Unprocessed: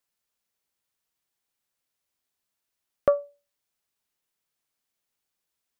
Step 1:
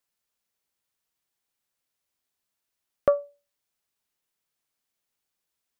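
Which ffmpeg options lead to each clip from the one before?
-af anull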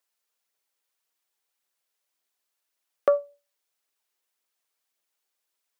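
-af "aphaser=in_gain=1:out_gain=1:delay=2.6:decay=0.27:speed=1.8:type=triangular,highpass=370,volume=1.5dB"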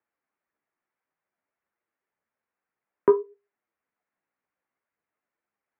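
-af "flanger=delay=7.7:depth=9.5:regen=47:speed=0.55:shape=sinusoidal,highpass=f=230:t=q:w=0.5412,highpass=f=230:t=q:w=1.307,lowpass=f=2.3k:t=q:w=0.5176,lowpass=f=2.3k:t=q:w=0.7071,lowpass=f=2.3k:t=q:w=1.932,afreqshift=-170,volume=6dB"

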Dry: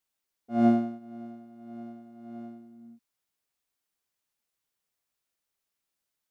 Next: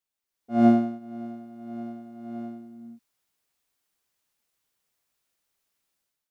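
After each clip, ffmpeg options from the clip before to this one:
-af "dynaudnorm=f=110:g=7:m=10.5dB,volume=-4.5dB"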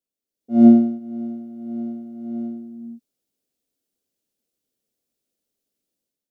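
-af "equalizer=f=250:t=o:w=1:g=11,equalizer=f=500:t=o:w=1:g=8,equalizer=f=1k:t=o:w=1:g=-11,equalizer=f=2k:t=o:w=1:g=-6,volume=-3dB"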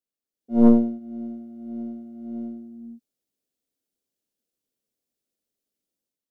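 -af "aeval=exprs='(tanh(2*val(0)+0.75)-tanh(0.75))/2':c=same"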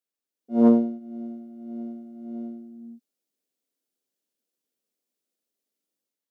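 -af "highpass=210"

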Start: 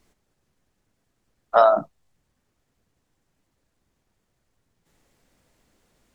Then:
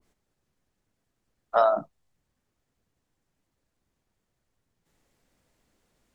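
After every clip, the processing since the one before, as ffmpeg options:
-af "adynamicequalizer=threshold=0.0398:dfrequency=1600:dqfactor=0.7:tfrequency=1600:tqfactor=0.7:attack=5:release=100:ratio=0.375:range=2:mode=cutabove:tftype=highshelf,volume=-5.5dB"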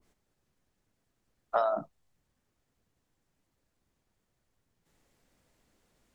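-af "acompressor=threshold=-24dB:ratio=6"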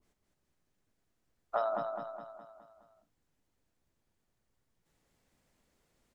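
-af "aecho=1:1:208|416|624|832|1040|1248:0.562|0.287|0.146|0.0746|0.038|0.0194,volume=-4.5dB"

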